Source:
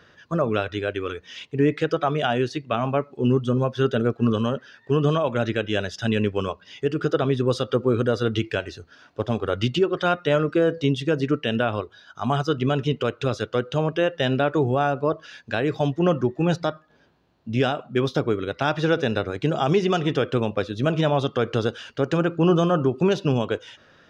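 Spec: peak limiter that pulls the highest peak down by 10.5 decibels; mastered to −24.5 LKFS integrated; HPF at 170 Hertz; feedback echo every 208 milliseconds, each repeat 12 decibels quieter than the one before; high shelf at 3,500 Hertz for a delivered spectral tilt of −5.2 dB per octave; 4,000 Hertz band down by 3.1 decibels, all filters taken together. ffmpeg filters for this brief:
ffmpeg -i in.wav -af "highpass=170,highshelf=frequency=3500:gain=4,equalizer=frequency=4000:width_type=o:gain=-7,alimiter=limit=-18.5dB:level=0:latency=1,aecho=1:1:208|416|624:0.251|0.0628|0.0157,volume=5dB" out.wav

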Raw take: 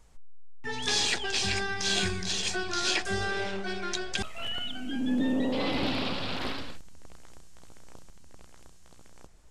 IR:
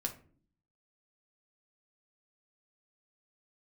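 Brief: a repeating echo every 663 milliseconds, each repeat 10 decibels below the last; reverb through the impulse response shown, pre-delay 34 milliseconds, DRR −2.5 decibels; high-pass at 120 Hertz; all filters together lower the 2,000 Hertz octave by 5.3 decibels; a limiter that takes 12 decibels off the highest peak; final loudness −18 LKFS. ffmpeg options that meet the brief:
-filter_complex "[0:a]highpass=120,equalizer=frequency=2000:width_type=o:gain=-7.5,alimiter=level_in=3dB:limit=-24dB:level=0:latency=1,volume=-3dB,aecho=1:1:663|1326|1989|2652:0.316|0.101|0.0324|0.0104,asplit=2[link_01][link_02];[1:a]atrim=start_sample=2205,adelay=34[link_03];[link_02][link_03]afir=irnorm=-1:irlink=0,volume=1.5dB[link_04];[link_01][link_04]amix=inputs=2:normalize=0,volume=12.5dB"

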